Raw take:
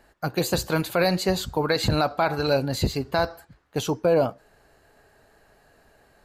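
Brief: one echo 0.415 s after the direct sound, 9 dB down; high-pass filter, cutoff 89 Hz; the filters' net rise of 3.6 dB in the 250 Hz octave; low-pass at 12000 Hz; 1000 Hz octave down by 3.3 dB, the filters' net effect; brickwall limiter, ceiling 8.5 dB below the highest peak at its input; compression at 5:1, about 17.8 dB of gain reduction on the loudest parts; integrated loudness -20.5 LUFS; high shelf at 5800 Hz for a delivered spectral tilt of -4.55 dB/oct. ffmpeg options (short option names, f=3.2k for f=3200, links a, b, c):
-af "highpass=89,lowpass=12k,equalizer=f=250:t=o:g=6,equalizer=f=1k:t=o:g=-5.5,highshelf=f=5.8k:g=4,acompressor=threshold=-37dB:ratio=5,alimiter=level_in=6.5dB:limit=-24dB:level=0:latency=1,volume=-6.5dB,aecho=1:1:415:0.355,volume=21.5dB"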